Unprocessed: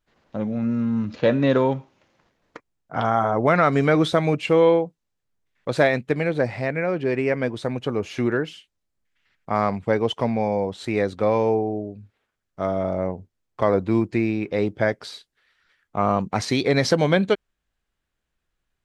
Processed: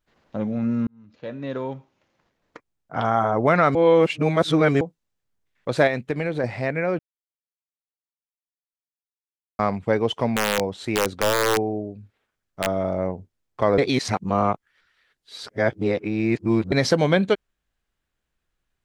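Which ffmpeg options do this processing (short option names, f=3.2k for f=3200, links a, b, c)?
-filter_complex "[0:a]asettb=1/sr,asplit=3[a][b][c];[a]atrim=end=5.874[d];[b]atrim=start=5.87:end=6.44,asetpts=PTS-STARTPTS,afade=t=in:d=0.004:c=qsin,afade=t=out:st=0.566:d=0.004:c=qsin,acompressor=threshold=-22dB:ratio=2:attack=3.2:release=140:knee=1:detection=peak[e];[c]atrim=start=6.436[f];[d][e]acrossfade=d=0.004:c1=hsin:c2=qsin[g];[g][f]acrossfade=d=0.004:c1=qsin:c2=hsin,asettb=1/sr,asplit=3[h][i][j];[h]atrim=end=10.364[k];[i]atrim=start=10.36:end=12.67,asetpts=PTS-STARTPTS,afade=t=in:d=0.004:c=qsin,afade=t=out:st=2.306:d=0.004:c=qsin,aeval=exprs='(mod(4.22*val(0)+1,2)-1)/4.22':c=same[l];[j]atrim=start=12.666[m];[k][l]acrossfade=d=0.004:c1=hsin:c2=qsin[n];[n][m]acrossfade=d=0.004:c1=qsin:c2=hsin,asplit=8[o][p][q][r][s][t][u][v];[o]atrim=end=0.87,asetpts=PTS-STARTPTS,afade=t=out:st=0.866:d=0.004:c=hsin[w];[p]atrim=start=0.87:end=3.752,asetpts=PTS-STARTPTS,afade=t=in:d=2.33[x];[q]atrim=start=3.748:end=4.812,asetpts=PTS-STARTPTS,areverse[y];[r]atrim=start=4.808:end=6.99,asetpts=PTS-STARTPTS,afade=t=out:st=2.178:d=0.004:c=hsin[z];[s]atrim=start=6.99:end=9.59,asetpts=PTS-STARTPTS,volume=0[aa];[t]atrim=start=9.59:end=13.782,asetpts=PTS-STARTPTS,afade=t=in:d=0.004:c=hsin[ab];[u]atrim=start=13.778:end=16.722,asetpts=PTS-STARTPTS,areverse[ac];[v]atrim=start=16.718[ad];[w][x]concat=n=2:v=0:a=1[ae];[ae][y]acrossfade=d=0.004:c1=hsin:c2=hsin[af];[z][aa][ab]concat=n=3:v=0:a=1[ag];[af][ag]acrossfade=d=0.004:c1=hsin:c2=hsin[ah];[ah][ac]acrossfade=d=0.004:c1=hsin:c2=hsin[ai];[ai][ad]acrossfade=d=0.004:c1=hsin:c2=hsin"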